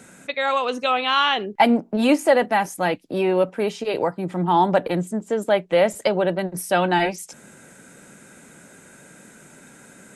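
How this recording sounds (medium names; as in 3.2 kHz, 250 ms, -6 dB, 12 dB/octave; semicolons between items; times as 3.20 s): noise floor -49 dBFS; spectral tilt -3.5 dB/octave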